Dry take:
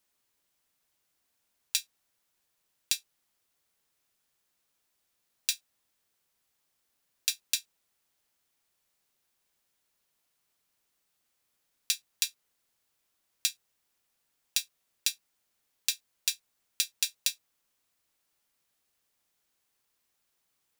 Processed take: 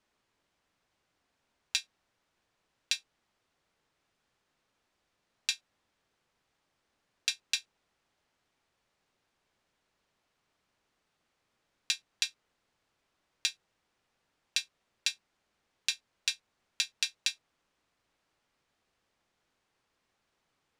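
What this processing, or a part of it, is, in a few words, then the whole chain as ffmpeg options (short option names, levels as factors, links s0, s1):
through cloth: -af "lowpass=6900,highshelf=f=3200:g=-11.5,volume=2.37"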